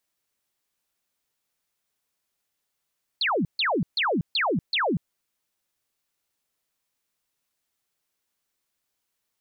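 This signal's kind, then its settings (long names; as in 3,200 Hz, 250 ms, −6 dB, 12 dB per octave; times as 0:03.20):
repeated falling chirps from 4,600 Hz, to 140 Hz, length 0.24 s sine, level −21 dB, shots 5, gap 0.14 s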